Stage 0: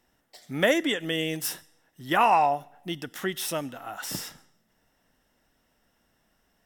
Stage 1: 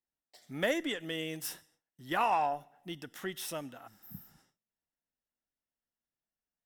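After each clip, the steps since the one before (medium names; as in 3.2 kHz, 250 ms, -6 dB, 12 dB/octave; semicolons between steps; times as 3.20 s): spectral replace 3.89–4.36 s, 250–12000 Hz after; Chebyshev shaper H 8 -34 dB, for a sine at -8 dBFS; gate with hold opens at -49 dBFS; trim -8.5 dB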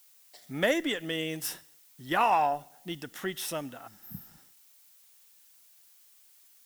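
added noise blue -64 dBFS; trim +4.5 dB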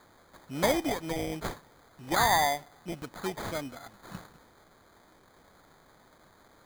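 sample-and-hold 16×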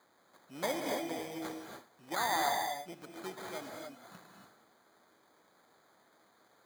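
Bessel high-pass 250 Hz, order 2; gated-style reverb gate 310 ms rising, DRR 2 dB; trim -8.5 dB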